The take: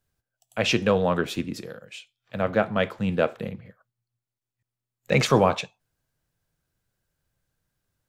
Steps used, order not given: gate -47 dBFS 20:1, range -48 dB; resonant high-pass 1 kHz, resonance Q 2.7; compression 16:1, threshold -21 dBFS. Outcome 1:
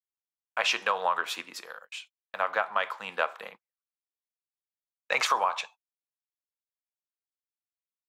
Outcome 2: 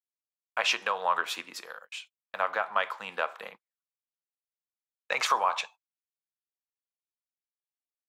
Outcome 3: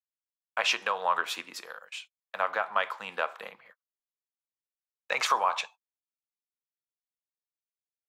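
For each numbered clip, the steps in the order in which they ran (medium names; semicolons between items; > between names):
resonant high-pass > compression > gate; compression > resonant high-pass > gate; compression > gate > resonant high-pass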